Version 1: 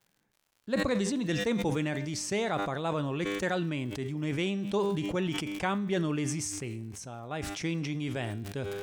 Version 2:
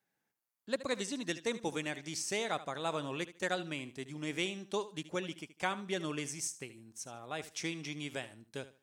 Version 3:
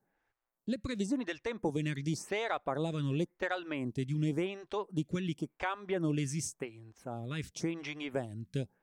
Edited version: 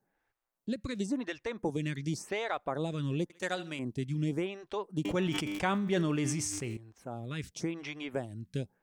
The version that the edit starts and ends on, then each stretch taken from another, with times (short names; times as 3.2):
3
3.3–3.79 from 2
5.05–6.77 from 1